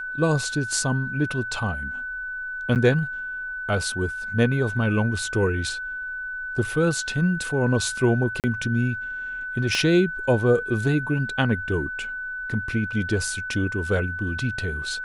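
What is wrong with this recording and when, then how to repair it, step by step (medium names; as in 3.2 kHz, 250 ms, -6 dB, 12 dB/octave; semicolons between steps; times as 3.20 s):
whine 1.5 kHz -29 dBFS
2.75–2.76 s: dropout 8.7 ms
8.40–8.44 s: dropout 38 ms
9.75 s: pop -12 dBFS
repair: de-click; band-stop 1.5 kHz, Q 30; interpolate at 2.75 s, 8.7 ms; interpolate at 8.40 s, 38 ms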